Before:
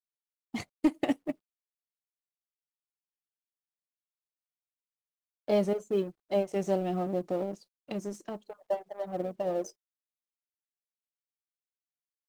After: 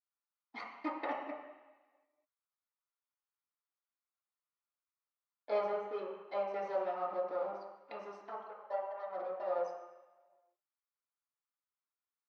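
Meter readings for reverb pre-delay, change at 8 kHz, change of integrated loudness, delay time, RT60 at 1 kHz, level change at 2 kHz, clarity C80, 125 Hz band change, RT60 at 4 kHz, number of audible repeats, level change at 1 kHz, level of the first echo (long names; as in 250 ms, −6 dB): 3 ms, below −20 dB, −7.0 dB, no echo audible, 1.2 s, −2.5 dB, 5.5 dB, below −25 dB, 1.3 s, no echo audible, +0.5 dB, no echo audible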